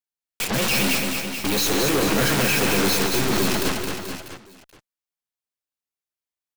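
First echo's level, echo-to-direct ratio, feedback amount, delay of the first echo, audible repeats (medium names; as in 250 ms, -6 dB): -10.0 dB, -2.0 dB, no regular repeats, 135 ms, 6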